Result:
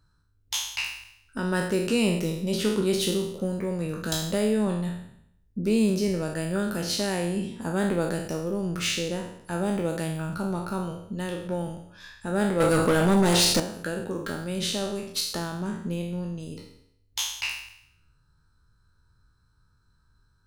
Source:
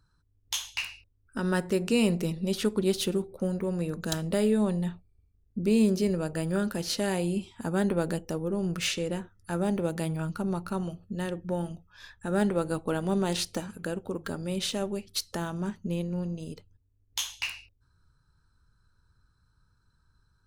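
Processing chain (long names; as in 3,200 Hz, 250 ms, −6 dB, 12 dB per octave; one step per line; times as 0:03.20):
peak hold with a decay on every bin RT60 0.72 s
0:12.60–0:13.60: leveller curve on the samples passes 3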